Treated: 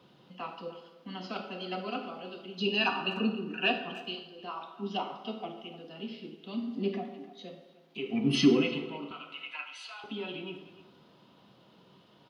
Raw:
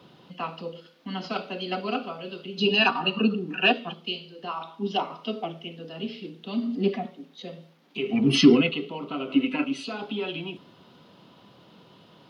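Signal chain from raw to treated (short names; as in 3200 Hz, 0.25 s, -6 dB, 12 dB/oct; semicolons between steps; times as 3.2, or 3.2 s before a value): 9.11–10.04 HPF 890 Hz 24 dB/oct; speakerphone echo 0.3 s, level -16 dB; plate-style reverb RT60 1.1 s, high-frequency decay 0.65×, DRR 6 dB; gain -7.5 dB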